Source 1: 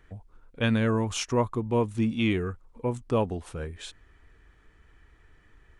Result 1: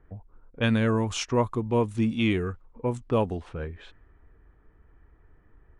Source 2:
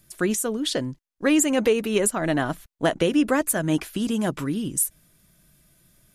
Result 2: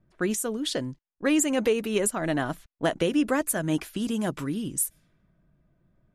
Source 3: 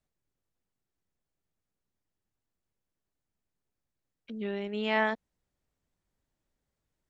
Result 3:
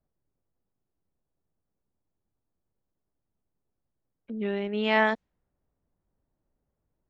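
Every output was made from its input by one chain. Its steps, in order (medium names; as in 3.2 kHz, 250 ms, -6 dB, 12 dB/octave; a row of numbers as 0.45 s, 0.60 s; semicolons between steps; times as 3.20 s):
level-controlled noise filter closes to 990 Hz, open at -23.5 dBFS; normalise loudness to -27 LUFS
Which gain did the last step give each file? +1.0 dB, -3.5 dB, +4.5 dB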